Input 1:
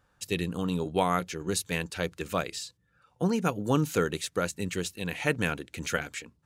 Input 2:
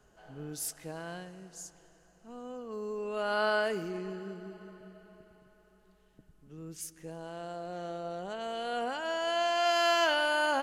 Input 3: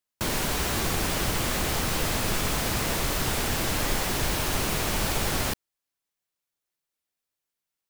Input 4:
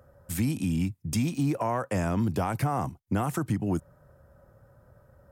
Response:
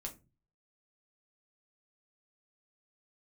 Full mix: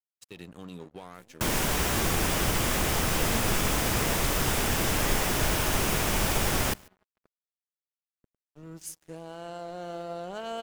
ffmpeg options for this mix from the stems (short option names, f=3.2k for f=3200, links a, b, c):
-filter_complex "[0:a]highpass=110,alimiter=limit=-20dB:level=0:latency=1:release=56,volume=-10dB,asplit=2[a][b];[1:a]agate=range=-33dB:threshold=-52dB:ratio=3:detection=peak,adelay=2050,volume=3dB[c];[2:a]equalizer=f=4.2k:w=5.1:g=-5.5,adelay=1200,volume=1dB,asplit=2[d][e];[e]volume=-21.5dB[f];[3:a]highpass=f=200:w=0.5412,highpass=f=200:w=1.3066,alimiter=level_in=1.5dB:limit=-24dB:level=0:latency=1,volume=-1.5dB,aeval=exprs='max(val(0),0)':c=same,adelay=850,volume=-20dB[g];[b]apad=whole_len=558903[h];[c][h]sidechaincompress=threshold=-53dB:ratio=4:attack=8.5:release=1400[i];[f]aecho=0:1:143:1[j];[a][i][d][g][j]amix=inputs=5:normalize=0,aeval=exprs='sgn(val(0))*max(abs(val(0))-0.00299,0)':c=same"